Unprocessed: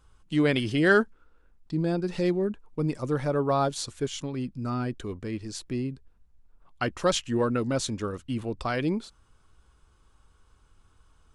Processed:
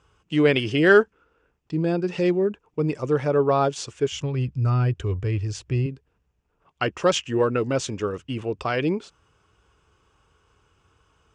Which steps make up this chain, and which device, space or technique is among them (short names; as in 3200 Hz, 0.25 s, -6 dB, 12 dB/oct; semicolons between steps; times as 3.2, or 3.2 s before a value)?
4.12–5.86 resonant low shelf 150 Hz +12 dB, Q 1.5; car door speaker (speaker cabinet 85–7300 Hz, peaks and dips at 230 Hz -6 dB, 430 Hz +5 dB, 2700 Hz +6 dB, 4100 Hz -8 dB); gain +3.5 dB